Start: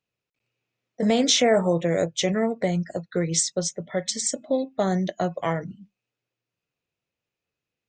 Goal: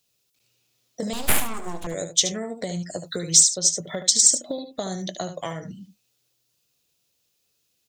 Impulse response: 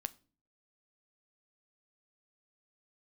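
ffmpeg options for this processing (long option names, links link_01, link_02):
-filter_complex "[0:a]asettb=1/sr,asplit=3[link_01][link_02][link_03];[link_01]atrim=end=3.064[link_04];[link_02]atrim=start=3.06:end=3.47,asetpts=PTS-STARTPTS,afade=type=in:duration=0.004:curve=qsin,afade=type=out:start_time=0.406:duration=0.004:curve=qsin,highshelf=frequency=4700:gain=8[link_05];[link_03]atrim=start=3.466[link_06];[link_04][link_05]acrossfade=duration=0.004:curve1=hsin:curve2=qsin[link_07];[link_07][link_06]acrossfade=duration=0.004:curve1=qsin:curve2=hsin,acompressor=threshold=-33dB:ratio=6,aexciter=amount=3.9:drive=7.3:freq=3300,asettb=1/sr,asplit=3[link_08][link_09][link_10];[link_08]atrim=end=1.134[link_11];[link_09]atrim=start=1.13:end=1.87,asetpts=PTS-STARTPTS,afade=type=in:duration=0.004:curve=qsin,afade=type=out:start_time=0.736:duration=0.004:curve=qsin,aeval=exprs='abs(val(0))':channel_layout=same[link_12];[link_10]atrim=start=1.866[link_13];[link_11][link_12]acrossfade=duration=0.004:curve1=hsin:curve2=qsin[link_14];[link_14][link_13]acrossfade=duration=0.004:curve1=qsin:curve2=hsin,asplit=2[link_15][link_16];[link_16]aecho=0:1:74:0.316[link_17];[link_15][link_17]amix=inputs=2:normalize=0,volume=5dB"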